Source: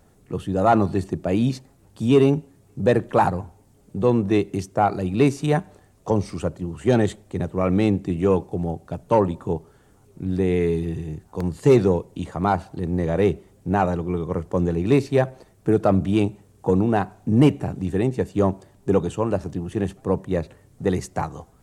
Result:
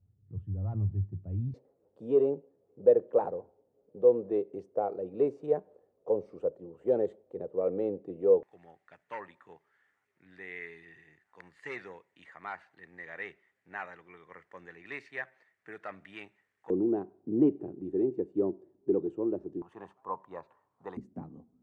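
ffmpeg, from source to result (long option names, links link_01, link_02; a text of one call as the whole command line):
ffmpeg -i in.wav -af "asetnsamples=nb_out_samples=441:pad=0,asendcmd='1.54 bandpass f 490;8.43 bandpass f 1900;16.7 bandpass f 350;19.62 bandpass f 1000;20.97 bandpass f 240',bandpass=frequency=100:width_type=q:width=5.9:csg=0" out.wav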